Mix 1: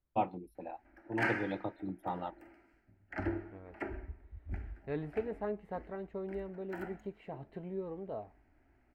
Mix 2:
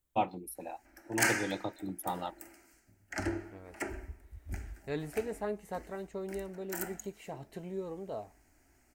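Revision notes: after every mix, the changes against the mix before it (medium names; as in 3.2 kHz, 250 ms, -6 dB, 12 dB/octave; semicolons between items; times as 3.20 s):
master: remove distance through air 450 m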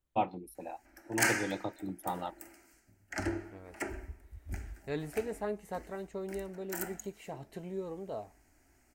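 first voice: add treble shelf 5.5 kHz -11.5 dB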